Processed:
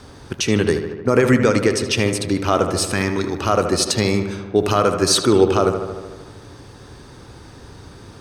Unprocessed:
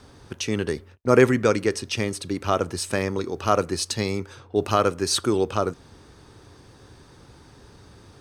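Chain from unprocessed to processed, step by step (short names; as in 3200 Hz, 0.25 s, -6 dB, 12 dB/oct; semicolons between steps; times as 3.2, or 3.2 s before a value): 2.78–3.38 bell 540 Hz -12.5 dB 0.59 oct; limiter -12 dBFS, peak gain reduction 9.5 dB; on a send: darkening echo 76 ms, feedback 71%, low-pass 3400 Hz, level -8.5 dB; on the sum: gain +7.5 dB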